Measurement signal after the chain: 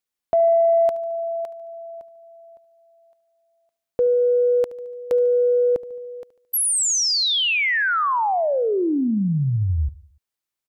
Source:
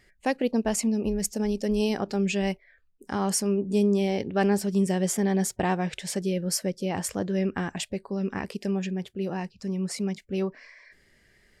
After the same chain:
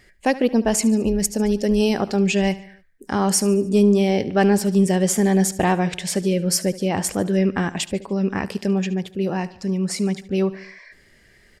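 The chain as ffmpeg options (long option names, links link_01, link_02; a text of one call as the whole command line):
ffmpeg -i in.wav -af "aecho=1:1:73|146|219|292:0.126|0.0655|0.034|0.0177,acontrast=85" out.wav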